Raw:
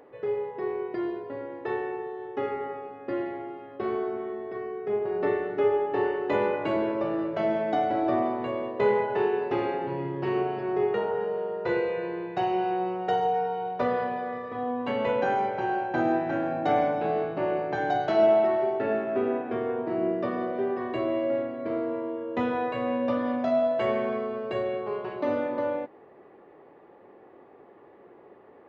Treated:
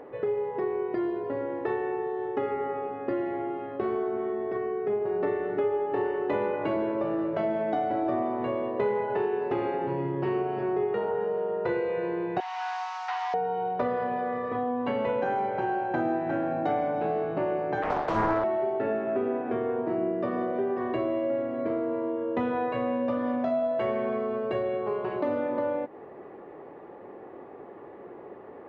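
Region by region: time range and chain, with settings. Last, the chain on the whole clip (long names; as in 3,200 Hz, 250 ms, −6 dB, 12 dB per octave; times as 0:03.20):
0:12.40–0:13.34: linear delta modulator 32 kbit/s, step −40.5 dBFS + Butterworth high-pass 850 Hz 48 dB per octave
0:17.82–0:18.44: parametric band 230 Hz −12.5 dB 0.66 octaves + mains-hum notches 60/120/180/240/300/360/420/480 Hz + highs frequency-modulated by the lows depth 0.78 ms
whole clip: high-shelf EQ 3,200 Hz −10.5 dB; downward compressor 3 to 1, threshold −36 dBFS; level +8 dB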